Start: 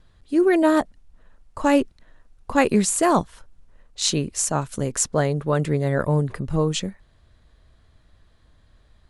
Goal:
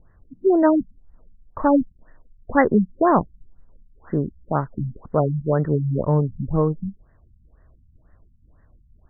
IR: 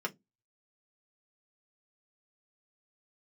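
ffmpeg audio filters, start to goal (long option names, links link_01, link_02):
-af "aemphasis=mode=production:type=50fm,afftfilt=real='re*lt(b*sr/1024,220*pow(2100/220,0.5+0.5*sin(2*PI*2*pts/sr)))':imag='im*lt(b*sr/1024,220*pow(2100/220,0.5+0.5*sin(2*PI*2*pts/sr)))':win_size=1024:overlap=0.75,volume=2dB"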